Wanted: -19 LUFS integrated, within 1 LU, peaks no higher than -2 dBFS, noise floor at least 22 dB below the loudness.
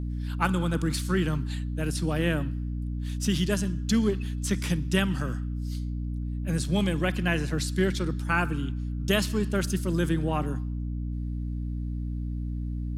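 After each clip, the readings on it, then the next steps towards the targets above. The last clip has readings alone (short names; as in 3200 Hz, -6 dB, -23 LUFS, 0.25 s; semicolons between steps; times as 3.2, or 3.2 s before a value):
hum 60 Hz; harmonics up to 300 Hz; hum level -29 dBFS; loudness -28.5 LUFS; peak -10.0 dBFS; loudness target -19.0 LUFS
-> notches 60/120/180/240/300 Hz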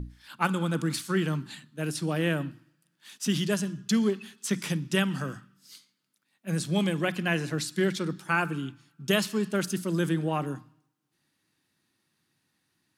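hum none; loudness -29.0 LUFS; peak -10.5 dBFS; loudness target -19.0 LUFS
-> gain +10 dB; limiter -2 dBFS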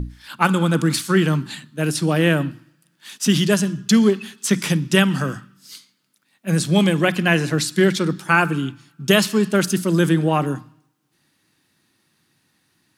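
loudness -19.0 LUFS; peak -2.0 dBFS; noise floor -66 dBFS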